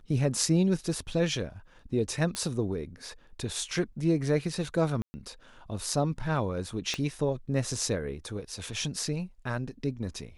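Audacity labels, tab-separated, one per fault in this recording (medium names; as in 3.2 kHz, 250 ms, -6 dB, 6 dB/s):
2.350000	2.350000	pop -18 dBFS
5.020000	5.140000	dropout 120 ms
6.940000	6.940000	pop -17 dBFS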